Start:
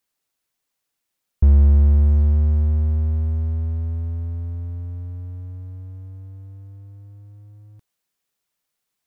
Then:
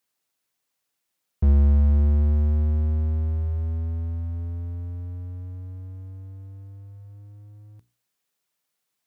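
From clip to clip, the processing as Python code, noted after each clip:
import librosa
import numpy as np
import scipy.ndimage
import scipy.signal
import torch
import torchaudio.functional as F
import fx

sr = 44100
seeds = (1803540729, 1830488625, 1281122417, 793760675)

y = scipy.signal.sosfilt(scipy.signal.butter(2, 79.0, 'highpass', fs=sr, output='sos'), x)
y = fx.hum_notches(y, sr, base_hz=60, count=7)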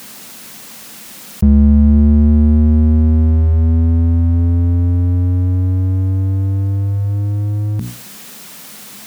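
y = fx.peak_eq(x, sr, hz=210.0, db=13.5, octaves=0.65)
y = fx.env_flatten(y, sr, amount_pct=70)
y = y * librosa.db_to_amplitude(4.5)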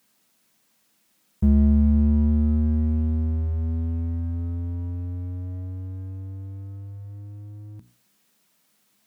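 y = fx.comb_fb(x, sr, f0_hz=320.0, decay_s=0.32, harmonics='all', damping=0.0, mix_pct=60)
y = fx.upward_expand(y, sr, threshold_db=-31.0, expansion=2.5)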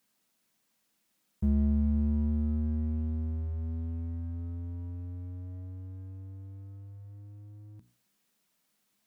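y = fx.tracing_dist(x, sr, depth_ms=0.025)
y = y * librosa.db_to_amplitude(-9.0)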